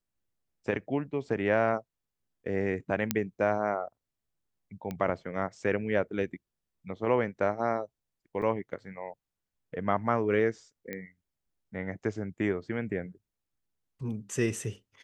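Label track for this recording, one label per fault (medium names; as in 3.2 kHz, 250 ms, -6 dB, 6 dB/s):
3.110000	3.110000	pop -9 dBFS
4.910000	4.910000	pop -22 dBFS
8.420000	8.420000	dropout 4 ms
10.930000	10.930000	pop -22 dBFS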